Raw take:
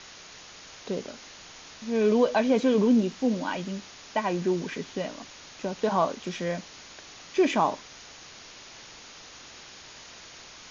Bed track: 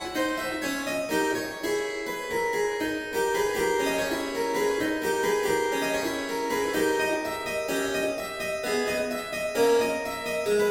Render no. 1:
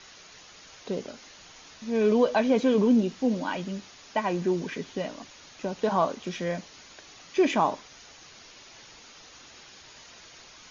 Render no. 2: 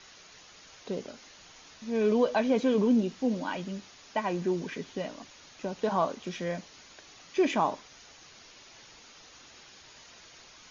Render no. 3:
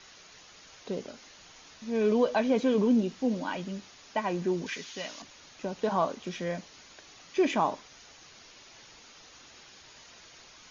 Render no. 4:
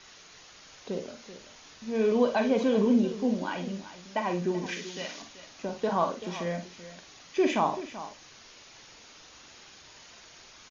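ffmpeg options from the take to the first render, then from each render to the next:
ffmpeg -i in.wav -af "afftdn=noise_reduction=6:noise_floor=-48" out.wav
ffmpeg -i in.wav -af "volume=-3dB" out.wav
ffmpeg -i in.wav -filter_complex "[0:a]asettb=1/sr,asplit=3[link_01][link_02][link_03];[link_01]atrim=end=4.664[link_04];[link_02]atrim=start=4.66:end=5.22,asetpts=PTS-STARTPTS,afade=type=in:duration=0.004:curve=qsin,afade=type=out:start_time=0.556:duration=0.004:curve=qsin,tiltshelf=frequency=1100:gain=-9[link_05];[link_03]atrim=start=5.216[link_06];[link_04][link_05]acrossfade=duration=0.004:curve1=hsin:curve2=qsin[link_07];[link_07][link_06]acrossfade=duration=0.004:curve1=qsin:curve2=hsin" out.wav
ffmpeg -i in.wav -filter_complex "[0:a]asplit=2[link_01][link_02];[link_02]adelay=45,volume=-8.5dB[link_03];[link_01][link_03]amix=inputs=2:normalize=0,aecho=1:1:58|384:0.237|0.2" out.wav

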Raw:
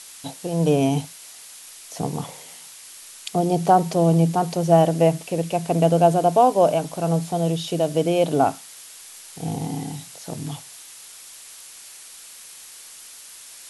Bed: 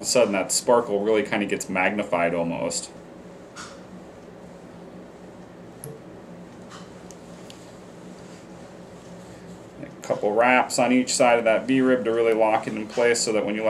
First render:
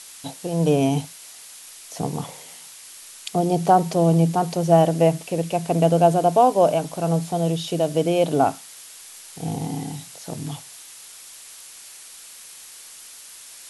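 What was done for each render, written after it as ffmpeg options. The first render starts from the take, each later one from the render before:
ffmpeg -i in.wav -af anull out.wav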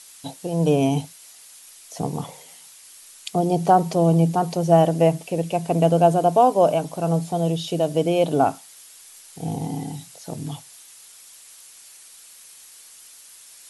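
ffmpeg -i in.wav -af "afftdn=noise_reduction=6:noise_floor=-43" out.wav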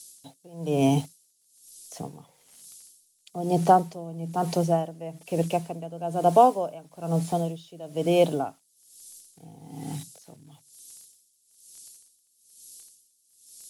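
ffmpeg -i in.wav -filter_complex "[0:a]acrossover=split=280|440|3900[link_01][link_02][link_03][link_04];[link_03]acrusher=bits=7:mix=0:aa=0.000001[link_05];[link_01][link_02][link_05][link_04]amix=inputs=4:normalize=0,aeval=exprs='val(0)*pow(10,-21*(0.5-0.5*cos(2*PI*1.1*n/s))/20)':channel_layout=same" out.wav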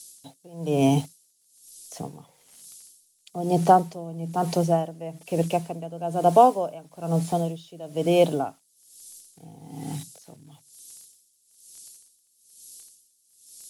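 ffmpeg -i in.wav -af "volume=1.5dB" out.wav

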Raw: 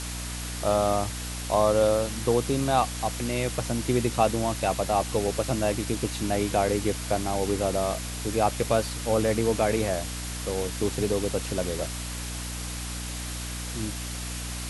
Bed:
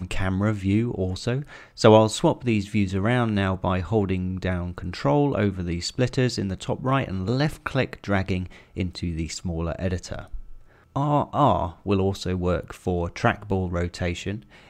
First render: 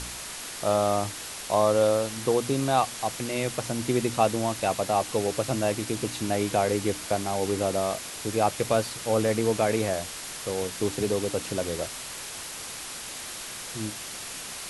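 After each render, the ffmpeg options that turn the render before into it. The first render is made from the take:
ffmpeg -i in.wav -af "bandreject=frequency=60:width_type=h:width=4,bandreject=frequency=120:width_type=h:width=4,bandreject=frequency=180:width_type=h:width=4,bandreject=frequency=240:width_type=h:width=4,bandreject=frequency=300:width_type=h:width=4" out.wav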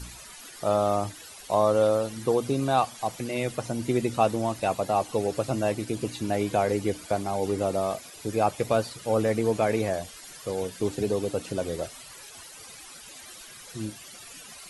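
ffmpeg -i in.wav -af "afftdn=noise_reduction=14:noise_floor=-38" out.wav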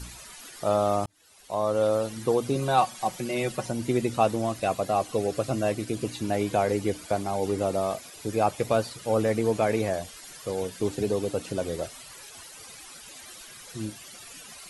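ffmpeg -i in.wav -filter_complex "[0:a]asettb=1/sr,asplit=3[link_01][link_02][link_03];[link_01]atrim=end=2.554[link_04];[link_02]atrim=start=2.55:end=3.71,asetpts=PTS-STARTPTS,afade=type=in:duration=0.004:curve=qsin,afade=type=out:start_time=1.156:duration=0.004:curve=qsin,aecho=1:1:5.4:0.58,atrim=end_sample=51156[link_05];[link_03]atrim=start=3.706[link_06];[link_04][link_05]acrossfade=duration=0.004:curve1=hsin:curve2=qsin[link_07];[link_07][link_06]acrossfade=duration=0.004:curve1=qsin:curve2=hsin,asettb=1/sr,asplit=3[link_08][link_09][link_10];[link_08]atrim=end=4.454[link_11];[link_09]atrim=start=4.45:end=6.08,asetpts=PTS-STARTPTS,afade=type=in:duration=0.004:curve=qsin,afade=type=out:start_time=1.626:duration=0.004:curve=qsin,asuperstop=centerf=880:order=4:qfactor=7.5[link_12];[link_10]atrim=start=6.076[link_13];[link_11][link_12]acrossfade=duration=0.004:curve1=hsin:curve2=qsin[link_14];[link_14][link_13]acrossfade=duration=0.004:curve1=qsin:curve2=hsin,asplit=2[link_15][link_16];[link_15]atrim=end=1.06,asetpts=PTS-STARTPTS,afade=type=out:start_time=1.056:duration=0.004:curve=hsin[link_17];[link_16]atrim=start=1.06,asetpts=PTS-STARTPTS,afade=type=in:duration=0.97[link_18];[link_17][link_18]concat=n=2:v=0:a=1" out.wav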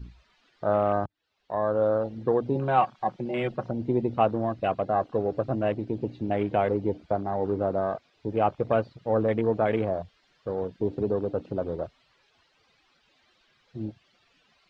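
ffmpeg -i in.wav -af "lowpass=frequency=4300:width=0.5412,lowpass=frequency=4300:width=1.3066,afwtdn=0.0158" out.wav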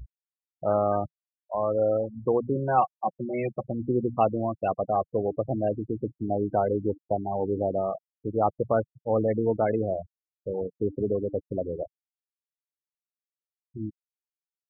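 ffmpeg -i in.wav -af "afftfilt=real='re*gte(hypot(re,im),0.0708)':imag='im*gte(hypot(re,im),0.0708)':win_size=1024:overlap=0.75,adynamicequalizer=threshold=0.00355:dfrequency=160:dqfactor=4.3:tfrequency=160:tqfactor=4.3:attack=5:release=100:ratio=0.375:range=1.5:mode=cutabove:tftype=bell" out.wav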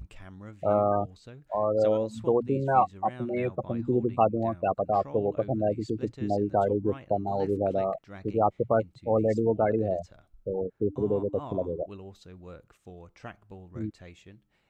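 ffmpeg -i in.wav -i bed.wav -filter_complex "[1:a]volume=-21.5dB[link_01];[0:a][link_01]amix=inputs=2:normalize=0" out.wav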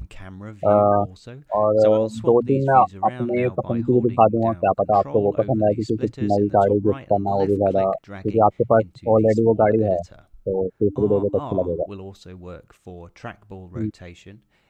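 ffmpeg -i in.wav -af "volume=8dB,alimiter=limit=-2dB:level=0:latency=1" out.wav

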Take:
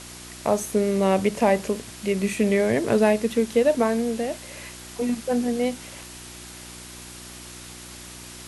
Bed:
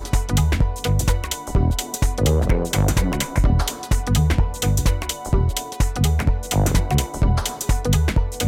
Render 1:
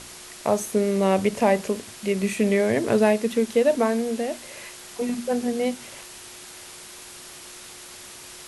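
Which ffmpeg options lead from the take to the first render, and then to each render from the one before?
ffmpeg -i in.wav -af "bandreject=frequency=60:width_type=h:width=4,bandreject=frequency=120:width_type=h:width=4,bandreject=frequency=180:width_type=h:width=4,bandreject=frequency=240:width_type=h:width=4,bandreject=frequency=300:width_type=h:width=4" out.wav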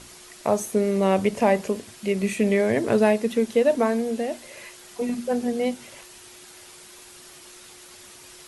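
ffmpeg -i in.wav -af "afftdn=noise_reduction=6:noise_floor=-43" out.wav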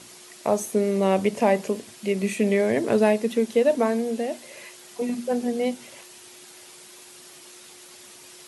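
ffmpeg -i in.wav -af "highpass=140,equalizer=frequency=1400:width=1.5:gain=-2.5" out.wav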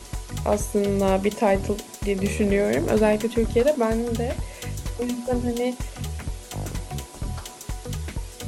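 ffmpeg -i in.wav -i bed.wav -filter_complex "[1:a]volume=-13dB[link_01];[0:a][link_01]amix=inputs=2:normalize=0" out.wav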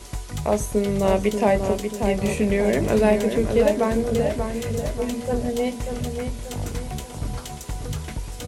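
ffmpeg -i in.wav -filter_complex "[0:a]asplit=2[link_01][link_02];[link_02]adelay=19,volume=-11.5dB[link_03];[link_01][link_03]amix=inputs=2:normalize=0,asplit=2[link_04][link_05];[link_05]adelay=587,lowpass=frequency=2400:poles=1,volume=-6dB,asplit=2[link_06][link_07];[link_07]adelay=587,lowpass=frequency=2400:poles=1,volume=0.47,asplit=2[link_08][link_09];[link_09]adelay=587,lowpass=frequency=2400:poles=1,volume=0.47,asplit=2[link_10][link_11];[link_11]adelay=587,lowpass=frequency=2400:poles=1,volume=0.47,asplit=2[link_12][link_13];[link_13]adelay=587,lowpass=frequency=2400:poles=1,volume=0.47,asplit=2[link_14][link_15];[link_15]adelay=587,lowpass=frequency=2400:poles=1,volume=0.47[link_16];[link_06][link_08][link_10][link_12][link_14][link_16]amix=inputs=6:normalize=0[link_17];[link_04][link_17]amix=inputs=2:normalize=0" out.wav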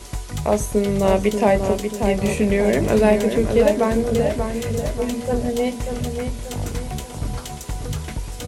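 ffmpeg -i in.wav -af "volume=2.5dB" out.wav

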